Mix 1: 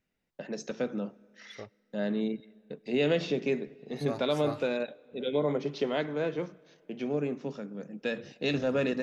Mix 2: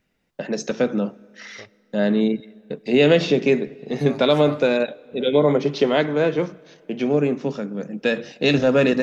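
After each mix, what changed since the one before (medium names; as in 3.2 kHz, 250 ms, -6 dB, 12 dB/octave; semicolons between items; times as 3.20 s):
first voice +11.5 dB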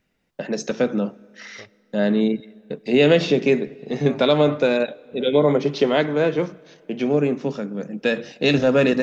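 second voice: add distance through air 340 m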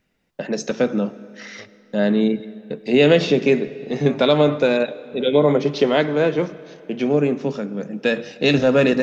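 first voice: send +9.5 dB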